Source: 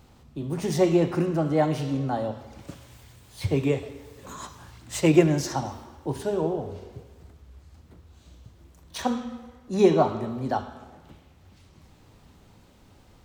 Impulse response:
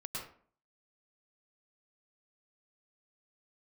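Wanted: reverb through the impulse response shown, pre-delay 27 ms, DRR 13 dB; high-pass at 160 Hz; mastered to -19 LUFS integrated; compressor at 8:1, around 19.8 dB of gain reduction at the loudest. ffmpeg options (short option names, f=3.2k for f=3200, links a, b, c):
-filter_complex "[0:a]highpass=160,acompressor=threshold=-33dB:ratio=8,asplit=2[a][b];[1:a]atrim=start_sample=2205,adelay=27[c];[b][c]afir=irnorm=-1:irlink=0,volume=-13.5dB[d];[a][d]amix=inputs=2:normalize=0,volume=19.5dB"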